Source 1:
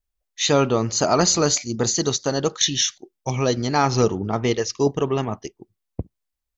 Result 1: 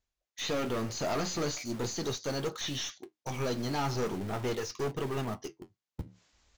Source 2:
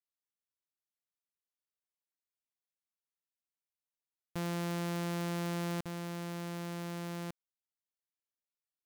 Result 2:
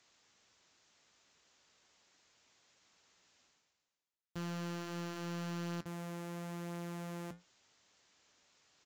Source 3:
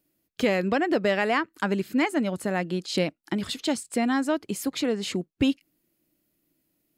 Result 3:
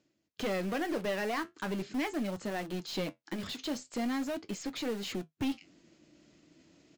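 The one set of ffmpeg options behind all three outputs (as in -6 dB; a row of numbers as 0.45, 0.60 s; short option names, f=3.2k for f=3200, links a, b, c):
-filter_complex "[0:a]highpass=f=72:p=1,aeval=exprs='(tanh(14.1*val(0)+0.2)-tanh(0.2))/14.1':c=same,aresample=16000,aresample=44100,asplit=2[a][b];[b]aeval=exprs='(mod(42.2*val(0)+1,2)-1)/42.2':c=same,volume=-8.5dB[c];[a][c]amix=inputs=2:normalize=0,acrossover=split=3800[d][e];[e]acompressor=threshold=-35dB:ratio=4:attack=1:release=60[f];[d][f]amix=inputs=2:normalize=0,flanger=delay=8:depth=6.1:regen=-60:speed=0.4:shape=triangular,areverse,acompressor=mode=upward:threshold=-45dB:ratio=2.5,areverse,volume=-1dB"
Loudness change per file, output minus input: -13.0, -4.5, -9.0 LU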